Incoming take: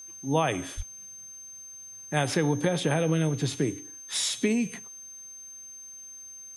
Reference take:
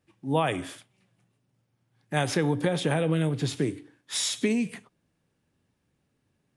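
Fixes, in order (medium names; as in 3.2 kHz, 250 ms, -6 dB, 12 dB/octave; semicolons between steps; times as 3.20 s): band-stop 6.3 kHz, Q 30; 0.76–0.88 s: high-pass 140 Hz 24 dB/octave; expander -37 dBFS, range -21 dB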